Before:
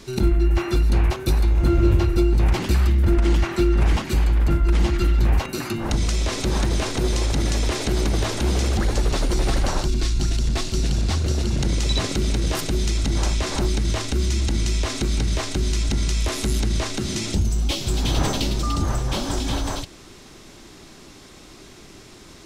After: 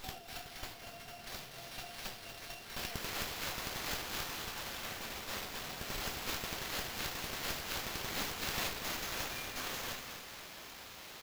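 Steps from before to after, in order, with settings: compression 5:1, threshold -27 dBFS, peak gain reduction 13.5 dB; differentiator; speed mistake 7.5 ips tape played at 15 ips; feedback delay 239 ms, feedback 52%, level -8 dB; reverberation RT60 0.70 s, pre-delay 5 ms, DRR -2.5 dB; sliding maximum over 5 samples; trim +3 dB

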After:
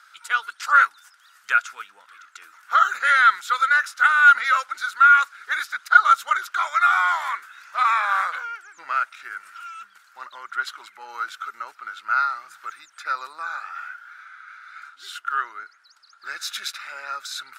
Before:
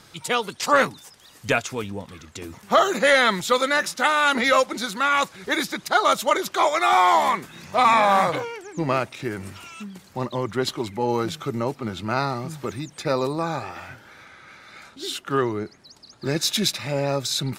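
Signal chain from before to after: resonant high-pass 1.4 kHz, resonance Q 9.8; trim -8.5 dB

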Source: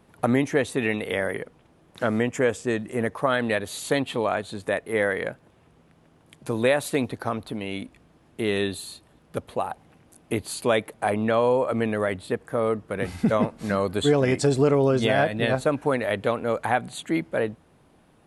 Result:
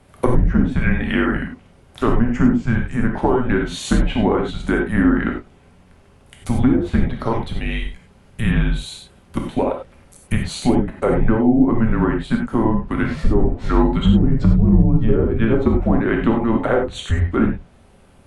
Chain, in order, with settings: low-pass that closes with the level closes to 510 Hz, closed at -16.5 dBFS; frequency shift -240 Hz; gated-style reverb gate 120 ms flat, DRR 1 dB; trim +6 dB

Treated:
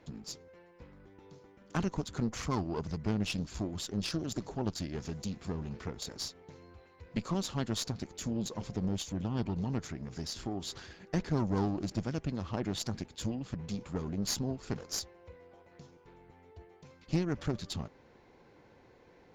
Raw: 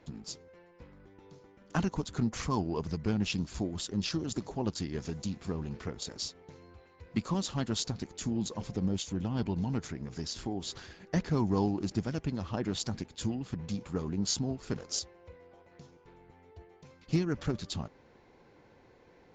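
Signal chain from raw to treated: single-diode clipper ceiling -31.5 dBFS

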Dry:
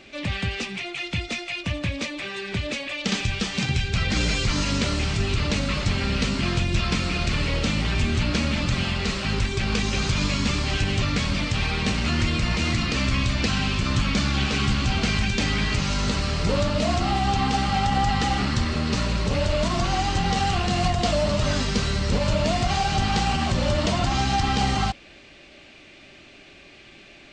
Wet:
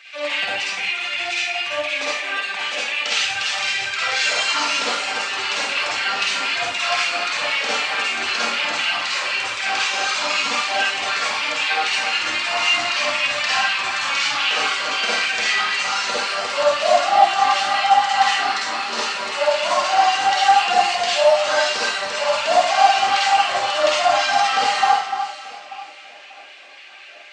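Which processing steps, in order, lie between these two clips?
reverb removal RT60 1.6 s; LFO high-pass sine 3.9 Hz 640–2600 Hz; echo whose repeats swap between lows and highs 295 ms, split 2 kHz, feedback 54%, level -7.5 dB; reverberation RT60 0.60 s, pre-delay 43 ms, DRR -7 dB

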